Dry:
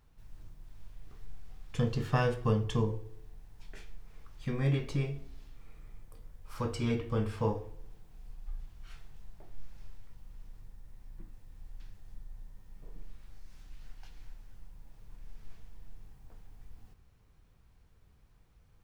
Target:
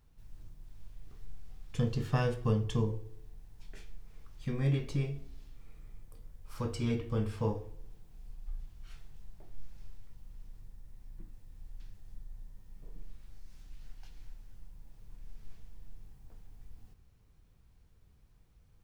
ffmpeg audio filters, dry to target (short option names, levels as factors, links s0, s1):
-af "equalizer=f=1200:t=o:w=2.8:g=-4.5"